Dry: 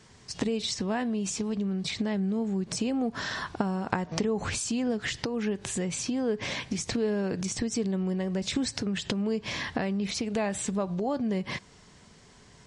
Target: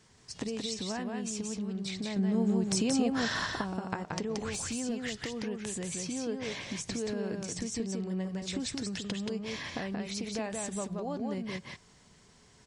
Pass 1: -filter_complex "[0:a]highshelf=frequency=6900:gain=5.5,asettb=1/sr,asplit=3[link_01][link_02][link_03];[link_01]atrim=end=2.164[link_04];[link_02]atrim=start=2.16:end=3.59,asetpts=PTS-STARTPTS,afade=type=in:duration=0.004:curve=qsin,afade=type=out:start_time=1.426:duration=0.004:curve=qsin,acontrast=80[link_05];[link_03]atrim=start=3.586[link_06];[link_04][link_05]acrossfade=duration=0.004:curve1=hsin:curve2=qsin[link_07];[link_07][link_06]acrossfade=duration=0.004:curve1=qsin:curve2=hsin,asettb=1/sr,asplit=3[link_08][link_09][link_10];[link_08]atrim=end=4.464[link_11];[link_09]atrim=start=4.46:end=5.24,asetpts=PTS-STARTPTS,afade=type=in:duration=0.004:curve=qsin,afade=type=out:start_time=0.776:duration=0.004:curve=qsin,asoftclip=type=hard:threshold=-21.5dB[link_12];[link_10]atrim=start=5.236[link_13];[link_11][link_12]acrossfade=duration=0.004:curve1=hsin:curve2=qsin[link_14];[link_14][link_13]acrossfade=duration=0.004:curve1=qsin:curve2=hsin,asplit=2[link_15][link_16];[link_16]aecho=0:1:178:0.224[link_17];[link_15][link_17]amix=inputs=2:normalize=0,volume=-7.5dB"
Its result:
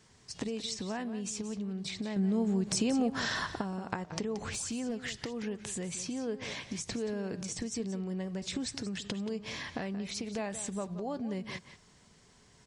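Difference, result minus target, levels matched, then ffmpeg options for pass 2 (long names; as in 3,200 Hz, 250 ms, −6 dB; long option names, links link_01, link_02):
echo-to-direct −9.5 dB
-filter_complex "[0:a]highshelf=frequency=6900:gain=5.5,asettb=1/sr,asplit=3[link_01][link_02][link_03];[link_01]atrim=end=2.164[link_04];[link_02]atrim=start=2.16:end=3.59,asetpts=PTS-STARTPTS,afade=type=in:duration=0.004:curve=qsin,afade=type=out:start_time=1.426:duration=0.004:curve=qsin,acontrast=80[link_05];[link_03]atrim=start=3.586[link_06];[link_04][link_05]acrossfade=duration=0.004:curve1=hsin:curve2=qsin[link_07];[link_07][link_06]acrossfade=duration=0.004:curve1=qsin:curve2=hsin,asettb=1/sr,asplit=3[link_08][link_09][link_10];[link_08]atrim=end=4.464[link_11];[link_09]atrim=start=4.46:end=5.24,asetpts=PTS-STARTPTS,afade=type=in:duration=0.004:curve=qsin,afade=type=out:start_time=0.776:duration=0.004:curve=qsin,asoftclip=type=hard:threshold=-21.5dB[link_12];[link_10]atrim=start=5.236[link_13];[link_11][link_12]acrossfade=duration=0.004:curve1=hsin:curve2=qsin[link_14];[link_14][link_13]acrossfade=duration=0.004:curve1=qsin:curve2=hsin,asplit=2[link_15][link_16];[link_16]aecho=0:1:178:0.668[link_17];[link_15][link_17]amix=inputs=2:normalize=0,volume=-7.5dB"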